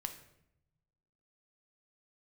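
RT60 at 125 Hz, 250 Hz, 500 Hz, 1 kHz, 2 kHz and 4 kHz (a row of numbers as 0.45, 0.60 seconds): 1.6, 1.3, 0.90, 0.70, 0.70, 0.60 seconds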